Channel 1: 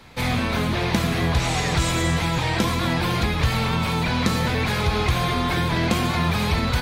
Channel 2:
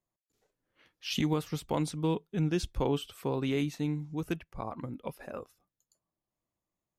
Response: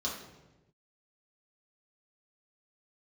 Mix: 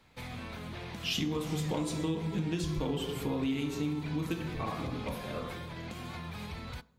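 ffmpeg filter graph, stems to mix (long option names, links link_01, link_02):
-filter_complex "[0:a]alimiter=limit=-16.5dB:level=0:latency=1:release=183,volume=-16dB,asplit=2[link_01][link_02];[link_02]volume=-22dB[link_03];[1:a]highshelf=frequency=4400:gain=7.5,volume=-0.5dB,asplit=2[link_04][link_05];[link_05]volume=-4.5dB[link_06];[2:a]atrim=start_sample=2205[link_07];[link_03][link_06]amix=inputs=2:normalize=0[link_08];[link_08][link_07]afir=irnorm=-1:irlink=0[link_09];[link_01][link_04][link_09]amix=inputs=3:normalize=0,acompressor=threshold=-29dB:ratio=6"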